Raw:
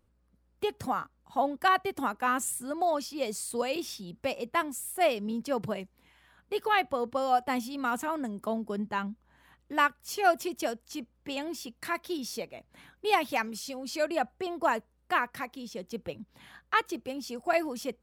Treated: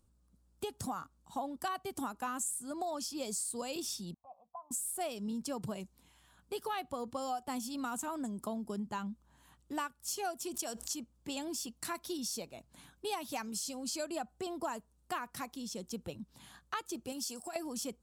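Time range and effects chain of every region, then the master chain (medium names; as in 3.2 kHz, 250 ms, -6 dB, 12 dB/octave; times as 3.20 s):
4.14–4.71 s: compression 3:1, threshold -30 dBFS + cascade formant filter a + static phaser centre 890 Hz, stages 4
10.54–10.94 s: bass shelf 330 Hz -9 dB + level flattener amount 50%
17.12–17.56 s: tilt EQ +2 dB/octave + compression 16:1, threshold -35 dBFS
whole clip: graphic EQ 500/2000/8000 Hz -6/-10/+9 dB; compression 5:1, threshold -35 dBFS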